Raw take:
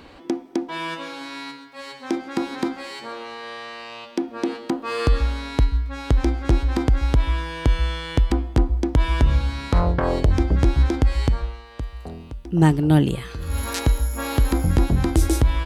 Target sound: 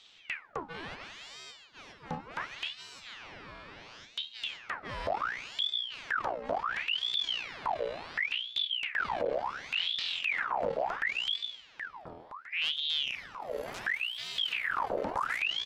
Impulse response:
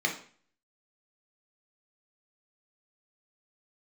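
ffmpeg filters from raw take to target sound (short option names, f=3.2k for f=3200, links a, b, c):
-af "aemphasis=mode=reproduction:type=50fm,aeval=exprs='(tanh(10*val(0)+0.65)-tanh(0.65))/10':c=same,aeval=exprs='val(0)*sin(2*PI*2000*n/s+2000*0.75/0.7*sin(2*PI*0.7*n/s))':c=same,volume=-6.5dB"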